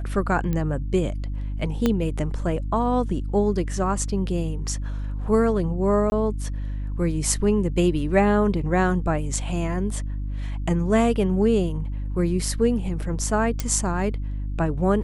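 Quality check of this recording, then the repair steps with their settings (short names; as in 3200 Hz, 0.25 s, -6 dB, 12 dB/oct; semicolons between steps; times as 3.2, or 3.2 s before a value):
hum 50 Hz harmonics 6 -28 dBFS
0.53 pop -15 dBFS
1.86 pop -8 dBFS
6.1–6.12 gap 20 ms
13.6 pop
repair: de-click; de-hum 50 Hz, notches 6; interpolate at 6.1, 20 ms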